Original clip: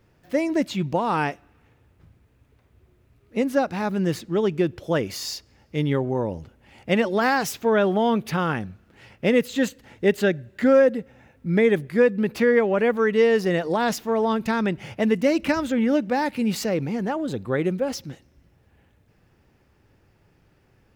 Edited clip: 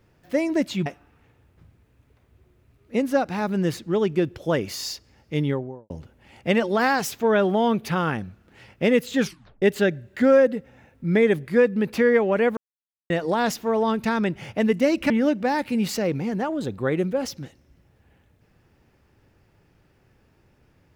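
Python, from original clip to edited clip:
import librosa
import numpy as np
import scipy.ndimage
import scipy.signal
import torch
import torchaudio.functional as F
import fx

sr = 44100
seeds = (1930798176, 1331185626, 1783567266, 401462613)

y = fx.studio_fade_out(x, sr, start_s=5.79, length_s=0.53)
y = fx.edit(y, sr, fx.cut(start_s=0.86, length_s=0.42),
    fx.tape_stop(start_s=9.6, length_s=0.44),
    fx.silence(start_s=12.99, length_s=0.53),
    fx.cut(start_s=15.52, length_s=0.25), tone=tone)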